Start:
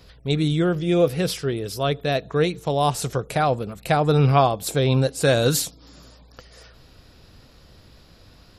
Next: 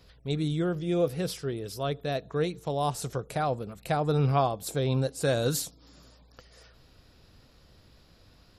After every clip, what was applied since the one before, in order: dynamic bell 2.5 kHz, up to -4 dB, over -40 dBFS, Q 1.1; trim -7.5 dB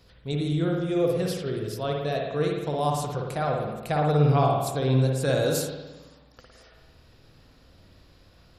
spring tank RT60 1.1 s, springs 54 ms, chirp 35 ms, DRR 0 dB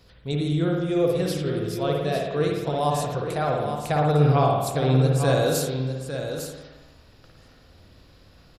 delay 853 ms -8.5 dB; trim +2 dB

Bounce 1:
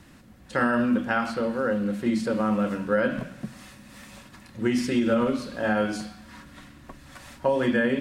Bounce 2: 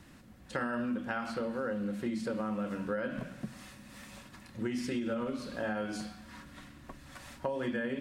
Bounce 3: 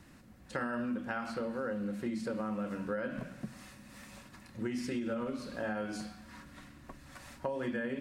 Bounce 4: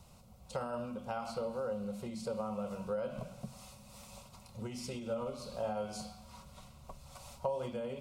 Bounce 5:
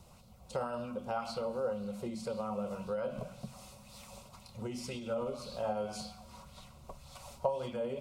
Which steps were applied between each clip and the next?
compression 4:1, threshold -28 dBFS, peak gain reduction 9 dB; trim -4 dB
peaking EQ 3.3 kHz -3.5 dB 0.35 oct; trim -1.5 dB
static phaser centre 720 Hz, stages 4; trim +3 dB
sweeping bell 1.9 Hz 310–4400 Hz +7 dB

